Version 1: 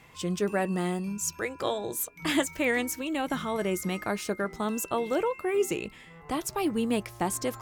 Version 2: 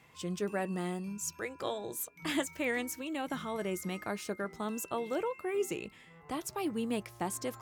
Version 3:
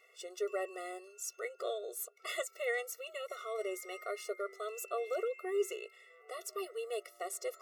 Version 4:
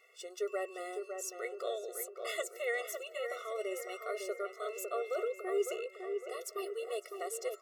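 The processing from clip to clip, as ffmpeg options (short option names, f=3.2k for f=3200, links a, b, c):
-af "highpass=65,volume=-6.5dB"
-af "afftfilt=real='re*eq(mod(floor(b*sr/1024/370),2),1)':imag='im*eq(mod(floor(b*sr/1024/370),2),1)':win_size=1024:overlap=0.75"
-filter_complex "[0:a]asplit=2[a][b];[b]adelay=556,lowpass=f=1.5k:p=1,volume=-5dB,asplit=2[c][d];[d]adelay=556,lowpass=f=1.5k:p=1,volume=0.52,asplit=2[e][f];[f]adelay=556,lowpass=f=1.5k:p=1,volume=0.52,asplit=2[g][h];[h]adelay=556,lowpass=f=1.5k:p=1,volume=0.52,asplit=2[i][j];[j]adelay=556,lowpass=f=1.5k:p=1,volume=0.52,asplit=2[k][l];[l]adelay=556,lowpass=f=1.5k:p=1,volume=0.52,asplit=2[m][n];[n]adelay=556,lowpass=f=1.5k:p=1,volume=0.52[o];[a][c][e][g][i][k][m][o]amix=inputs=8:normalize=0"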